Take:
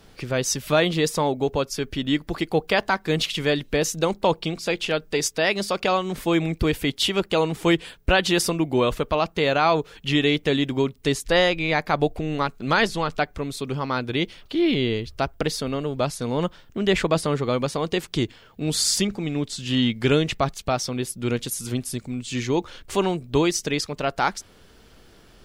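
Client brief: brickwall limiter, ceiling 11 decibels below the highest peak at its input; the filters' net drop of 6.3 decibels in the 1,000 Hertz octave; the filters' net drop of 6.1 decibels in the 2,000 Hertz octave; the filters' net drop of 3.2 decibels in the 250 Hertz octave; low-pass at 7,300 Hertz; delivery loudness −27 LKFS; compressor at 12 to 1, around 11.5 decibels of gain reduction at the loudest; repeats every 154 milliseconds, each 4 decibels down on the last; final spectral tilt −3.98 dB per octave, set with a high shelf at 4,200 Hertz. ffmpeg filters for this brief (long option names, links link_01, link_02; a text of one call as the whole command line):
ffmpeg -i in.wav -af "lowpass=7300,equalizer=frequency=250:width_type=o:gain=-4,equalizer=frequency=1000:width_type=o:gain=-7,equalizer=frequency=2000:width_type=o:gain=-8,highshelf=frequency=4200:gain=8,acompressor=threshold=-29dB:ratio=12,alimiter=level_in=0.5dB:limit=-24dB:level=0:latency=1,volume=-0.5dB,aecho=1:1:154|308|462|616|770|924|1078|1232|1386:0.631|0.398|0.25|0.158|0.0994|0.0626|0.0394|0.0249|0.0157,volume=6dB" out.wav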